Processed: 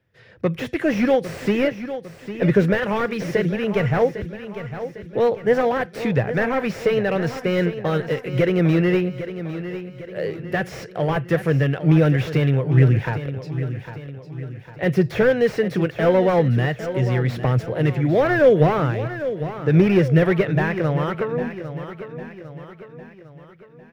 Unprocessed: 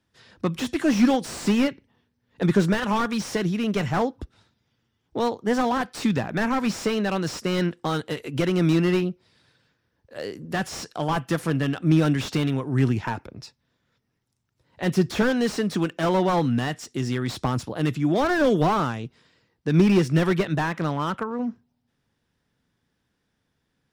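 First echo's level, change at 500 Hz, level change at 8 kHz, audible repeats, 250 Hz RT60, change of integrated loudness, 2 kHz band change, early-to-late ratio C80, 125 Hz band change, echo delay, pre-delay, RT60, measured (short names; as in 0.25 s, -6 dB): -11.5 dB, +7.0 dB, n/a, 4, none, +3.5 dB, +4.5 dB, none, +6.0 dB, 0.803 s, none, none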